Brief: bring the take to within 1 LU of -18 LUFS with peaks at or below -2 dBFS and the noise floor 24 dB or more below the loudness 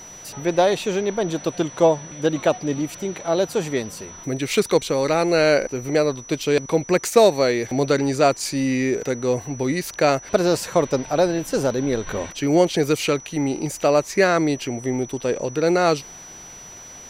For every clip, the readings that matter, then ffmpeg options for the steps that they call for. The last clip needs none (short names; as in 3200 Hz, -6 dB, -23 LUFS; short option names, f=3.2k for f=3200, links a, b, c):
steady tone 5900 Hz; tone level -39 dBFS; loudness -21.0 LUFS; peak -4.0 dBFS; loudness target -18.0 LUFS
-> -af "bandreject=f=5.9k:w=30"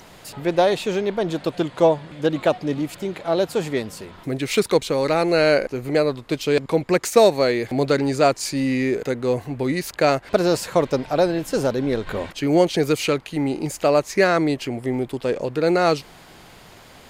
steady tone none; loudness -21.0 LUFS; peak -4.0 dBFS; loudness target -18.0 LUFS
-> -af "volume=3dB,alimiter=limit=-2dB:level=0:latency=1"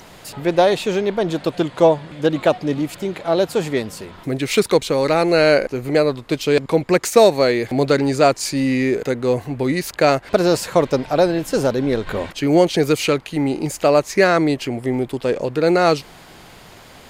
loudness -18.5 LUFS; peak -2.0 dBFS; noise floor -43 dBFS